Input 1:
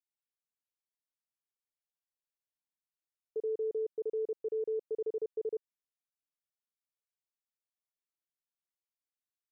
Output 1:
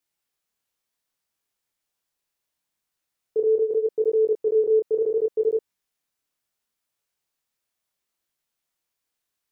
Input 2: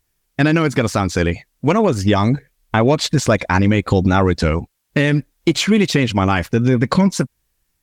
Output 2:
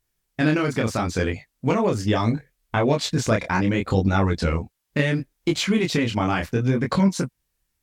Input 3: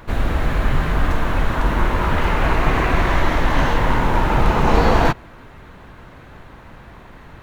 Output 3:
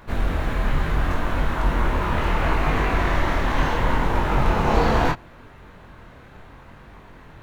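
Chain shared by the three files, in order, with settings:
chorus 0.72 Hz, delay 20 ms, depth 7.8 ms; normalise loudness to -23 LUFS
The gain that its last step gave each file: +16.0 dB, -3.0 dB, -1.0 dB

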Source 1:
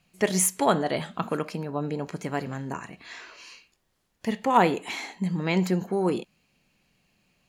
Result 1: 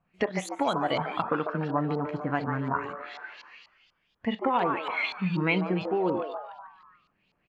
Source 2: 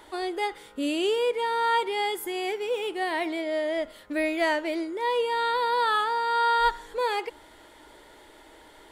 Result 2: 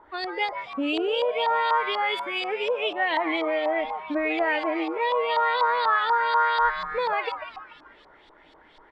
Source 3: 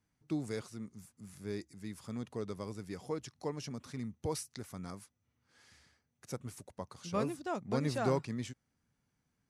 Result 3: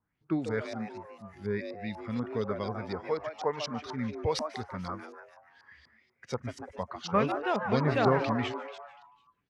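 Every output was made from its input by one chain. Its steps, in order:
spectral noise reduction 10 dB; compression 6:1, threshold -28 dBFS; on a send: frequency-shifting echo 146 ms, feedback 50%, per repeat +150 Hz, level -8.5 dB; on the sum: LFO low-pass saw up 4.1 Hz 960–4500 Hz; peak normalisation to -12 dBFS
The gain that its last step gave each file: +4.0 dB, +4.0 dB, +7.5 dB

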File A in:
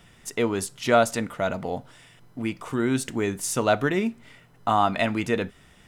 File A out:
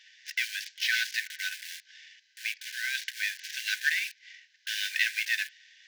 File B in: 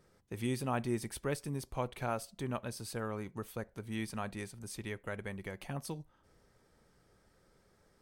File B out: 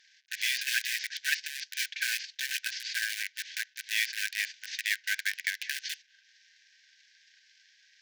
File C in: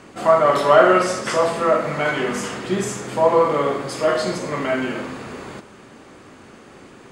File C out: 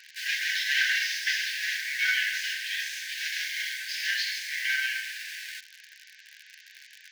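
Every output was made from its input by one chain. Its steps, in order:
CVSD coder 32 kbps; in parallel at -4 dB: bit crusher 6-bit; on the sum: brick-wall FIR high-pass 1.5 kHz; peak normalisation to -12 dBFS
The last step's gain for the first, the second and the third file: +1.5 dB, +12.5 dB, -1.0 dB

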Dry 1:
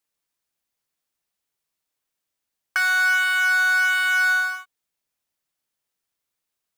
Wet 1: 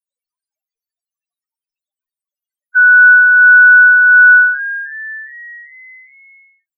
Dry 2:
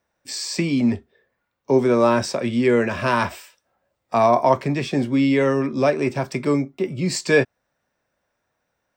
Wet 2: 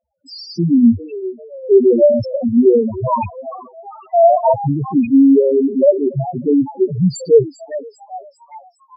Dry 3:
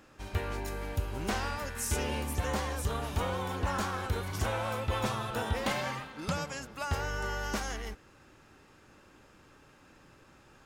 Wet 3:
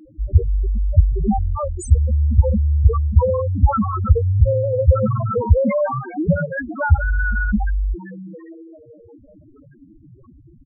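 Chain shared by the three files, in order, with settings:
rattle on loud lows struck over -25 dBFS, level -9 dBFS; frequency-shifting echo 400 ms, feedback 51%, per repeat +140 Hz, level -15 dB; loudest bins only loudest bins 2; peak normalisation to -1.5 dBFS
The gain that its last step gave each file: +15.0 dB, +10.0 dB, +22.0 dB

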